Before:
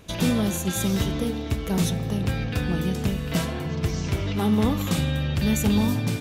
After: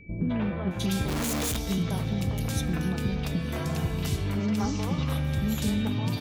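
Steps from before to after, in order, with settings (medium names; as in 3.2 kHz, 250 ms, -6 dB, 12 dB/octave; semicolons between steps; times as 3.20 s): compression, threshold -23 dBFS, peak gain reduction 7 dB; three bands offset in time lows, mids, highs 210/710 ms, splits 430/2300 Hz; 1.08–1.57 s: Schmitt trigger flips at -44 dBFS; whistle 2.3 kHz -51 dBFS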